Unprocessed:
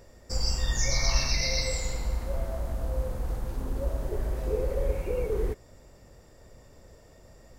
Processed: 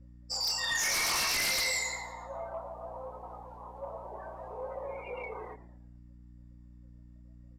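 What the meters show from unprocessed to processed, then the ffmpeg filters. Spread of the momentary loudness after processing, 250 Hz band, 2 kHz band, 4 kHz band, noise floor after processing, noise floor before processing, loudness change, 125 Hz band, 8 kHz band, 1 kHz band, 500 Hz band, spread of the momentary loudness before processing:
18 LU, -11.5 dB, +4.5 dB, +0.5 dB, -53 dBFS, -54 dBFS, -1.5 dB, -18.0 dB, +0.5 dB, +3.5 dB, -8.0 dB, 9 LU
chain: -filter_complex "[0:a]afftdn=nr=30:nf=-41,highpass=f=930:w=0.5412,highpass=f=930:w=1.3066,highshelf=f=3.6k:g=-11,flanger=delay=19:depth=6.7:speed=0.63,aeval=exprs='val(0)+0.000447*(sin(2*PI*60*n/s)+sin(2*PI*2*60*n/s)/2+sin(2*PI*3*60*n/s)/3+sin(2*PI*4*60*n/s)/4+sin(2*PI*5*60*n/s)/5)':c=same,aeval=exprs='0.0473*sin(PI/2*3.98*val(0)/0.0473)':c=same,aeval=exprs='0.0473*(cos(1*acos(clip(val(0)/0.0473,-1,1)))-cos(1*PI/2))+0.00237*(cos(2*acos(clip(val(0)/0.0473,-1,1)))-cos(2*PI/2))+0.00133*(cos(4*acos(clip(val(0)/0.0473,-1,1)))-cos(4*PI/2))':c=same,asplit=5[a][b][c][d][e];[b]adelay=112,afreqshift=-89,volume=-16dB[f];[c]adelay=224,afreqshift=-178,volume=-22.6dB[g];[d]adelay=336,afreqshift=-267,volume=-29.1dB[h];[e]adelay=448,afreqshift=-356,volume=-35.7dB[i];[a][f][g][h][i]amix=inputs=5:normalize=0,aresample=32000,aresample=44100"

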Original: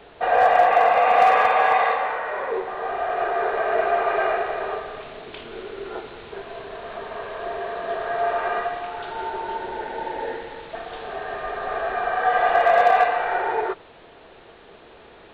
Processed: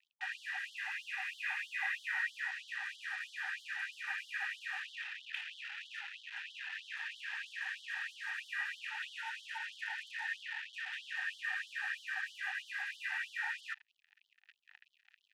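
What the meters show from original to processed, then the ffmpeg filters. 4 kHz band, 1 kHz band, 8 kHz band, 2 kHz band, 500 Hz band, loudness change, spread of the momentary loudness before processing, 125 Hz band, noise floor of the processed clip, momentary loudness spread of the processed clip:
-6.5 dB, -32.0 dB, n/a, -9.5 dB, under -40 dB, -18.0 dB, 19 LU, under -40 dB, -79 dBFS, 6 LU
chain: -filter_complex "[0:a]areverse,acompressor=threshold=-26dB:ratio=10,areverse,acrusher=bits=5:mix=0:aa=0.5,asplit=3[a][b][c];[a]bandpass=f=530:t=q:w=8,volume=0dB[d];[b]bandpass=f=1.84k:t=q:w=8,volume=-6dB[e];[c]bandpass=f=2.48k:t=q:w=8,volume=-9dB[f];[d][e][f]amix=inputs=3:normalize=0,afftfilt=real='re*gte(b*sr/1024,750*pow(3000/750,0.5+0.5*sin(2*PI*3.1*pts/sr)))':imag='im*gte(b*sr/1024,750*pow(3000/750,0.5+0.5*sin(2*PI*3.1*pts/sr)))':win_size=1024:overlap=0.75,volume=11.5dB"

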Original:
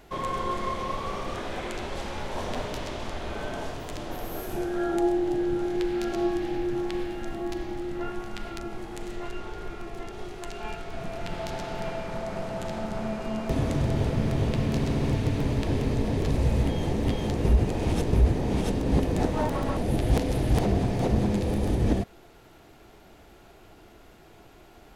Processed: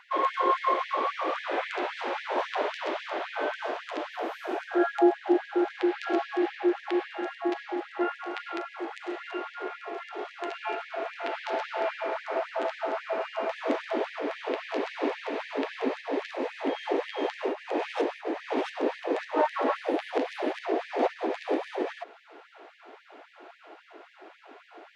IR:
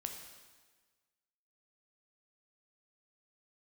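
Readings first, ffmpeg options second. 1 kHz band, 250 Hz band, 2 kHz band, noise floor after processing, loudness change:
+4.0 dB, -3.5 dB, +4.5 dB, -55 dBFS, -2.0 dB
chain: -af "alimiter=limit=-16.5dB:level=0:latency=1:release=255,highpass=180,lowpass=2.5k,aeval=exprs='val(0)+0.00178*(sin(2*PI*60*n/s)+sin(2*PI*2*60*n/s)/2+sin(2*PI*3*60*n/s)/3+sin(2*PI*4*60*n/s)/4+sin(2*PI*5*60*n/s)/5)':c=same,afftfilt=real='re*gte(b*sr/1024,250*pow(1700/250,0.5+0.5*sin(2*PI*3.7*pts/sr)))':imag='im*gte(b*sr/1024,250*pow(1700/250,0.5+0.5*sin(2*PI*3.7*pts/sr)))':win_size=1024:overlap=0.75,volume=7dB"

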